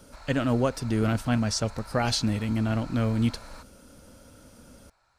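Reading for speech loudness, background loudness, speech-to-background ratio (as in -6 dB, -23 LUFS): -27.0 LUFS, -46.5 LUFS, 19.5 dB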